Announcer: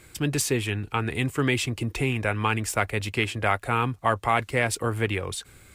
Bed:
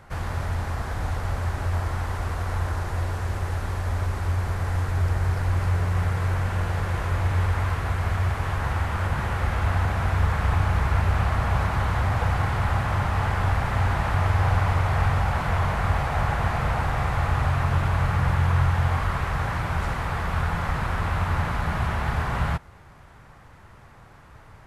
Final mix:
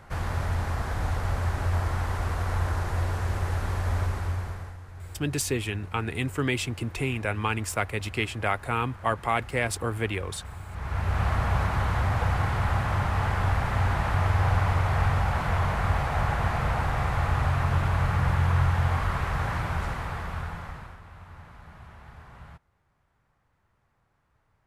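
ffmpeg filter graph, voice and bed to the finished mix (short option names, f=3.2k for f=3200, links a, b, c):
-filter_complex "[0:a]adelay=5000,volume=-3dB[a];[1:a]volume=16dB,afade=t=out:st=3.98:d=0.79:silence=0.125893,afade=t=in:st=10.69:d=0.59:silence=0.149624,afade=t=out:st=19.57:d=1.43:silence=0.1[b];[a][b]amix=inputs=2:normalize=0"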